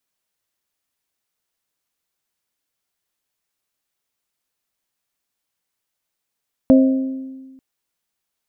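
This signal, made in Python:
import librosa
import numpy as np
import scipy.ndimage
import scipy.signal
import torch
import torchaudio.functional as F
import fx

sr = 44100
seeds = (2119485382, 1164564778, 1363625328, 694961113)

y = fx.strike_glass(sr, length_s=0.89, level_db=-6.5, body='bell', hz=264.0, decay_s=1.47, tilt_db=6.5, modes=3)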